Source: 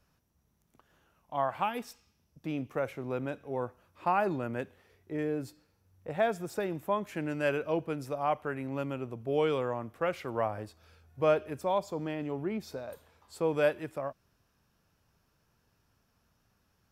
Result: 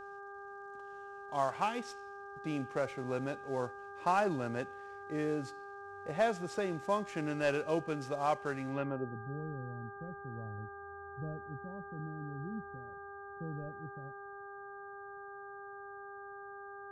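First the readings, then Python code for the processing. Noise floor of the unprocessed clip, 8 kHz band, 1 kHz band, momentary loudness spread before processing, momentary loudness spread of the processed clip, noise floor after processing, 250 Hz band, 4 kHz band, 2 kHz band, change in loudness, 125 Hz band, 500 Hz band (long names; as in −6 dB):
−74 dBFS, can't be measured, −2.5 dB, 12 LU, 15 LU, −48 dBFS, −3.5 dB, −3.5 dB, −1.5 dB, −5.5 dB, −1.5 dB, −5.5 dB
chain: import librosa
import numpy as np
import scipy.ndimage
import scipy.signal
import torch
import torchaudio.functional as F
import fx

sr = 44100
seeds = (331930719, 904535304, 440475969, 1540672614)

y = fx.cvsd(x, sr, bps=64000)
y = fx.filter_sweep_lowpass(y, sr, from_hz=6700.0, to_hz=160.0, start_s=8.68, end_s=9.2, q=1.1)
y = fx.dmg_buzz(y, sr, base_hz=400.0, harmonics=4, level_db=-46.0, tilt_db=-1, odd_only=False)
y = y * librosa.db_to_amplitude(-2.0)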